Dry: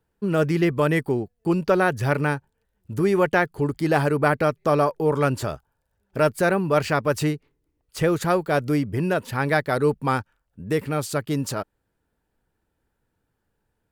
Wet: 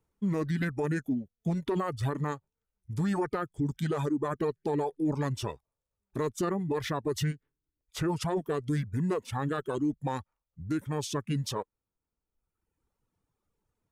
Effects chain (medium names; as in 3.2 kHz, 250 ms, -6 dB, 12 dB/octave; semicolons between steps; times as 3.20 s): reverb removal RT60 1.2 s; formant shift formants -5 st; peak limiter -18.5 dBFS, peak gain reduction 11.5 dB; trim -3.5 dB